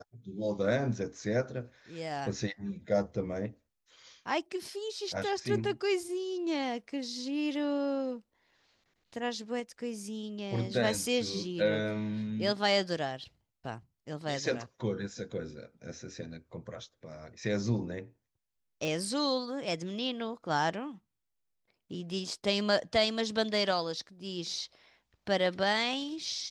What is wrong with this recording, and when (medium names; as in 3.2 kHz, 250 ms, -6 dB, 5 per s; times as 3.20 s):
18.85 s: pop -22 dBFS